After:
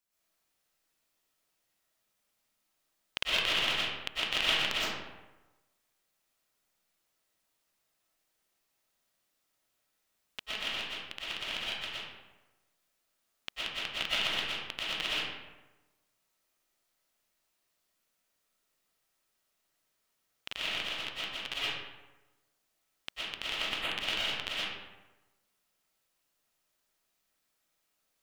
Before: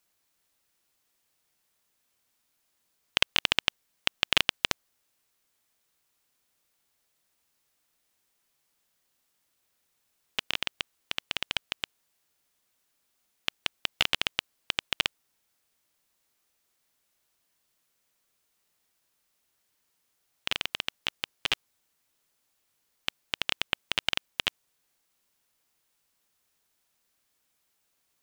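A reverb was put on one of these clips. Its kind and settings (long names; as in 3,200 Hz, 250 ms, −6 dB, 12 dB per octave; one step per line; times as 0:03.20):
comb and all-pass reverb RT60 1.1 s, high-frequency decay 0.6×, pre-delay 80 ms, DRR −9.5 dB
level −11.5 dB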